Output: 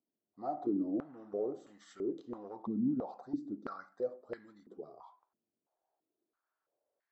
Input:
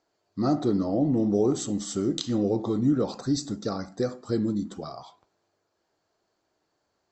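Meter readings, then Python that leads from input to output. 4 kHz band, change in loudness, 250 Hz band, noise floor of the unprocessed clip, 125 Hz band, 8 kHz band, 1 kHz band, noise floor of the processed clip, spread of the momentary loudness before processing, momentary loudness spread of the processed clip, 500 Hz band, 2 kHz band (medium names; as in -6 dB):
under -25 dB, -12.0 dB, -12.0 dB, -77 dBFS, -20.5 dB, under -30 dB, -8.0 dB, under -85 dBFS, 10 LU, 17 LU, -11.5 dB, -9.5 dB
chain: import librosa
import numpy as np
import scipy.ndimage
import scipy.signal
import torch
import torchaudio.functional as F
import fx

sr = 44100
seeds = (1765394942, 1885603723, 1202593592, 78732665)

p1 = np.clip(x, -10.0 ** (-22.0 / 20.0), 10.0 ** (-22.0 / 20.0))
p2 = x + F.gain(torch.from_numpy(p1), -10.5).numpy()
p3 = fx.filter_held_bandpass(p2, sr, hz=3.0, low_hz=230.0, high_hz=1800.0)
y = F.gain(torch.from_numpy(p3), -5.5).numpy()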